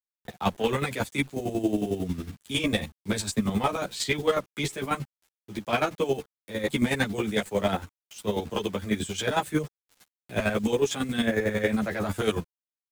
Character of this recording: a quantiser's noise floor 8-bit, dither none; chopped level 11 Hz, depth 65%, duty 30%; a shimmering, thickened sound

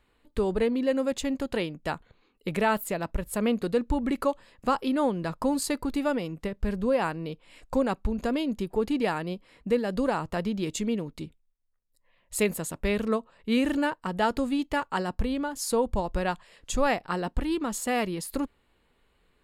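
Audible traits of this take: noise floor -69 dBFS; spectral tilt -5.0 dB/octave

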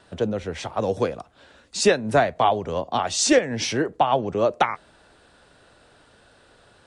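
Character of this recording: noise floor -56 dBFS; spectral tilt -3.5 dB/octave

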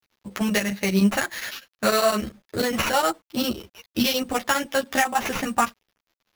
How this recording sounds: a quantiser's noise floor 10-bit, dither none; chopped level 9.9 Hz, depth 65%, duty 80%; aliases and images of a low sample rate 8.5 kHz, jitter 0%; a shimmering, thickened sound

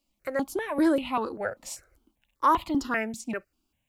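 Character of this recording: notches that jump at a steady rate 5.1 Hz 420–1600 Hz

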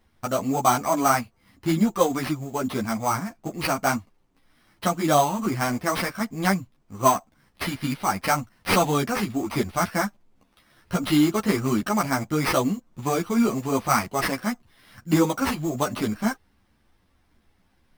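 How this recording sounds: aliases and images of a low sample rate 7.1 kHz, jitter 0%; a shimmering, thickened sound

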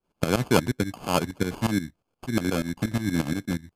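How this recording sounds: tremolo saw up 8.4 Hz, depth 85%; aliases and images of a low sample rate 1.9 kHz, jitter 0%; MP3

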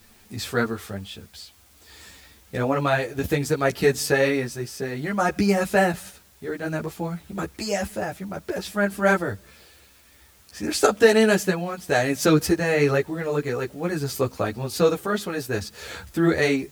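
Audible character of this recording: tremolo triangle 0.58 Hz, depth 50%; a quantiser's noise floor 10-bit, dither triangular; a shimmering, thickened sound

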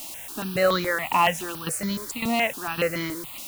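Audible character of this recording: tremolo saw down 1.8 Hz, depth 75%; a quantiser's noise floor 8-bit, dither triangular; notches that jump at a steady rate 7.1 Hz 430–2700 Hz

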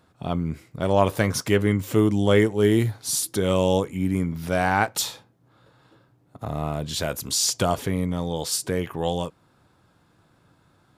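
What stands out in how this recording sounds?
noise floor -62 dBFS; spectral tilt -4.5 dB/octave

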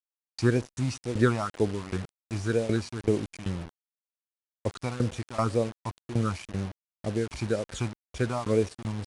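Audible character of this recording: phasing stages 8, 2 Hz, lowest notch 450–1400 Hz; tremolo saw down 2.6 Hz, depth 90%; a quantiser's noise floor 8-bit, dither none; IMA ADPCM

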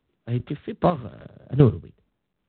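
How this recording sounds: a buzz of ramps at a fixed pitch in blocks of 8 samples; chopped level 2.5 Hz, depth 60%, duty 25%; µ-law

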